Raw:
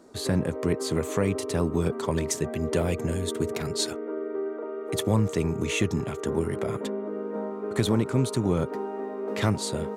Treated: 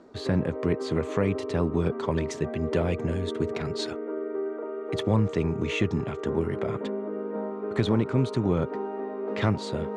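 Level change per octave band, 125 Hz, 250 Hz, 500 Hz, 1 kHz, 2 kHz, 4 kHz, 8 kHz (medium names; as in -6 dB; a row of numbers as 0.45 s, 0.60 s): 0.0 dB, 0.0 dB, 0.0 dB, 0.0 dB, -0.5 dB, -4.0 dB, -13.0 dB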